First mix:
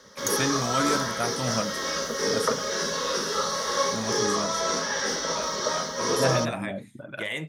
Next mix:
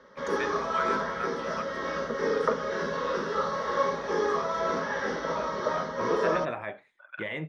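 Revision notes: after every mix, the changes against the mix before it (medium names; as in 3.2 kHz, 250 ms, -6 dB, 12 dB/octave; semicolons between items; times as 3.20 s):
first voice: add high-pass 1.1 kHz 24 dB/octave; master: add low-pass 1.9 kHz 12 dB/octave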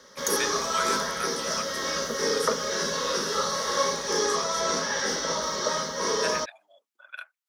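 second voice: muted; master: remove low-pass 1.9 kHz 12 dB/octave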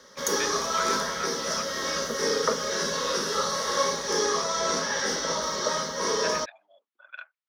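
speech: add distance through air 190 m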